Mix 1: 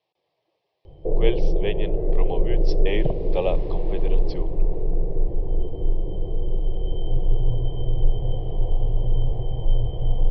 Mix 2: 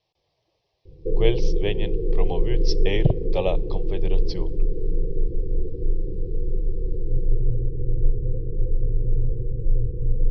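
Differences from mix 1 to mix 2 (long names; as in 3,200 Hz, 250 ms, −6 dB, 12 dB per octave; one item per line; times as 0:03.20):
speech: remove band-pass filter 220–3,200 Hz
background: add Chebyshev low-pass filter 520 Hz, order 10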